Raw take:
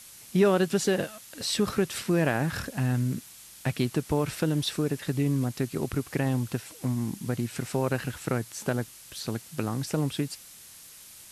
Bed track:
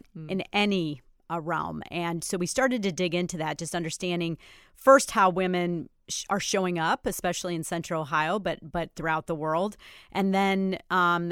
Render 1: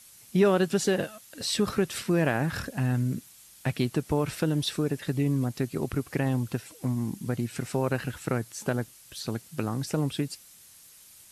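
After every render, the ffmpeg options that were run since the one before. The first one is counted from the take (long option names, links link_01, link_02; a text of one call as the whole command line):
ffmpeg -i in.wav -af "afftdn=noise_reduction=6:noise_floor=-49" out.wav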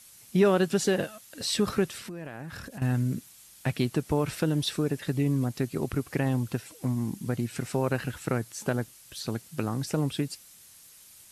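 ffmpeg -i in.wav -filter_complex "[0:a]asettb=1/sr,asplit=3[link_01][link_02][link_03];[link_01]atrim=end=1.884[link_04];[link_02]atrim=start=1.88:end=2.82,asetpts=PTS-STARTPTS,afade=type=in:duration=0.004:curve=qsin,afade=type=out:start_time=0.936:duration=0.004:curve=qsin,acompressor=threshold=-37dB:ratio=6:attack=3.2:release=140:knee=1:detection=peak[link_05];[link_03]atrim=start=2.816[link_06];[link_04][link_05]acrossfade=duration=0.004:curve1=hsin:curve2=qsin[link_07];[link_07][link_06]acrossfade=duration=0.004:curve1=qsin:curve2=hsin" out.wav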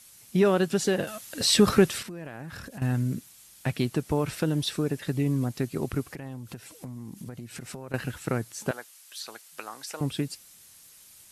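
ffmpeg -i in.wav -filter_complex "[0:a]asettb=1/sr,asplit=3[link_01][link_02][link_03];[link_01]atrim=end=1.074[link_04];[link_02]atrim=start=1.07:end=2.03,asetpts=PTS-STARTPTS,afade=type=in:duration=0.004:curve=qsin,afade=type=out:start_time=0.956:duration=0.004:curve=qsin,acontrast=89[link_05];[link_03]atrim=start=2.026[link_06];[link_04][link_05]acrossfade=duration=0.004:curve1=hsin:curve2=qsin[link_07];[link_07][link_06]acrossfade=duration=0.004:curve1=qsin:curve2=hsin,asettb=1/sr,asplit=3[link_08][link_09][link_10];[link_08]atrim=end=6.094[link_11];[link_09]atrim=start=6.09:end=7.94,asetpts=PTS-STARTPTS,afade=type=in:duration=0.004:curve=qsin,afade=type=out:start_time=1.846:duration=0.004:curve=qsin,acompressor=threshold=-35dB:ratio=10:attack=3.2:release=140:knee=1:detection=peak[link_12];[link_10]atrim=start=7.936[link_13];[link_11][link_12]acrossfade=duration=0.004:curve1=hsin:curve2=qsin[link_14];[link_14][link_13]acrossfade=duration=0.004:curve1=qsin:curve2=hsin,asettb=1/sr,asplit=3[link_15][link_16][link_17];[link_15]atrim=end=8.714[link_18];[link_16]atrim=start=8.71:end=10.01,asetpts=PTS-STARTPTS,afade=type=in:duration=0.004:curve=qsin,afade=type=out:start_time=1.296:duration=0.004:curve=qsin,highpass=840[link_19];[link_17]atrim=start=10.006[link_20];[link_18][link_19]acrossfade=duration=0.004:curve1=hsin:curve2=qsin[link_21];[link_21][link_20]acrossfade=duration=0.004:curve1=qsin:curve2=hsin" out.wav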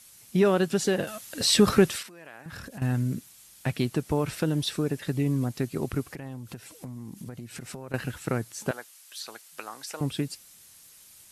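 ffmpeg -i in.wav -filter_complex "[0:a]asettb=1/sr,asplit=3[link_01][link_02][link_03];[link_01]atrim=end=1.964[link_04];[link_02]atrim=start=1.96:end=2.46,asetpts=PTS-STARTPTS,afade=type=in:duration=0.004:curve=qsin,afade=type=out:start_time=0.496:duration=0.004:curve=qsin,highpass=frequency=1000:poles=1[link_05];[link_03]atrim=start=2.456[link_06];[link_04][link_05]acrossfade=duration=0.004:curve1=hsin:curve2=qsin[link_07];[link_07][link_06]acrossfade=duration=0.004:curve1=qsin:curve2=hsin" out.wav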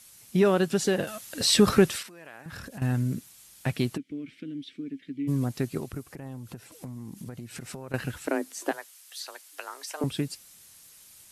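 ffmpeg -i in.wav -filter_complex "[0:a]asplit=3[link_01][link_02][link_03];[link_01]afade=type=out:start_time=3.96:duration=0.02[link_04];[link_02]asplit=3[link_05][link_06][link_07];[link_05]bandpass=frequency=270:width_type=q:width=8,volume=0dB[link_08];[link_06]bandpass=frequency=2290:width_type=q:width=8,volume=-6dB[link_09];[link_07]bandpass=frequency=3010:width_type=q:width=8,volume=-9dB[link_10];[link_08][link_09][link_10]amix=inputs=3:normalize=0,afade=type=in:start_time=3.96:duration=0.02,afade=type=out:start_time=5.27:duration=0.02[link_11];[link_03]afade=type=in:start_time=5.27:duration=0.02[link_12];[link_04][link_11][link_12]amix=inputs=3:normalize=0,asettb=1/sr,asplit=3[link_13][link_14][link_15];[link_13]atrim=end=5.784[link_16];[link_14]atrim=start=5.78:end=6.72,asetpts=PTS-STARTPTS,afade=type=in:duration=0.004:curve=qsin,afade=type=out:start_time=0.936:duration=0.004:curve=qsin,acrossover=split=1500|5300[link_17][link_18][link_19];[link_17]acompressor=threshold=-34dB:ratio=4[link_20];[link_18]acompressor=threshold=-56dB:ratio=4[link_21];[link_19]acompressor=threshold=-54dB:ratio=4[link_22];[link_20][link_21][link_22]amix=inputs=3:normalize=0[link_23];[link_15]atrim=start=6.716[link_24];[link_16][link_23]acrossfade=duration=0.004:curve1=hsin:curve2=qsin[link_25];[link_25][link_24]acrossfade=duration=0.004:curve1=qsin:curve2=hsin,asettb=1/sr,asplit=3[link_26][link_27][link_28];[link_26]atrim=end=8.274[link_29];[link_27]atrim=start=8.27:end=10.04,asetpts=PTS-STARTPTS,afade=type=in:duration=0.004:curve=qsin,afade=type=out:start_time=1.766:duration=0.004:curve=qsin,afreqshift=140[link_30];[link_28]atrim=start=10.036[link_31];[link_29][link_30]acrossfade=duration=0.004:curve1=hsin:curve2=qsin[link_32];[link_32][link_31]acrossfade=duration=0.004:curve1=qsin:curve2=hsin" out.wav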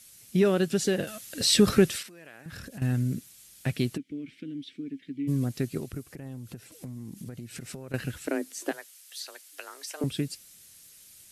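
ffmpeg -i in.wav -af "equalizer=frequency=950:width_type=o:width=1:gain=-8.5" out.wav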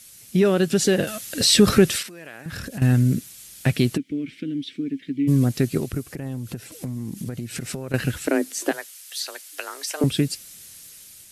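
ffmpeg -i in.wav -filter_complex "[0:a]asplit=2[link_01][link_02];[link_02]alimiter=limit=-20dB:level=0:latency=1:release=67,volume=0dB[link_03];[link_01][link_03]amix=inputs=2:normalize=0,dynaudnorm=framelen=280:gausssize=5:maxgain=3.5dB" out.wav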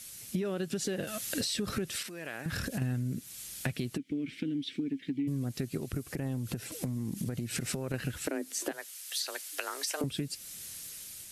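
ffmpeg -i in.wav -af "alimiter=limit=-14.5dB:level=0:latency=1:release=480,acompressor=threshold=-31dB:ratio=5" out.wav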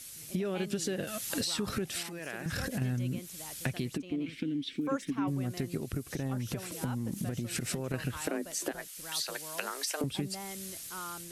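ffmpeg -i in.wav -i bed.wav -filter_complex "[1:a]volume=-19.5dB[link_01];[0:a][link_01]amix=inputs=2:normalize=0" out.wav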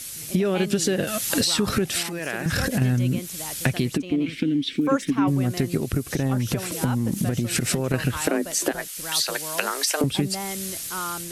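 ffmpeg -i in.wav -af "volume=11dB" out.wav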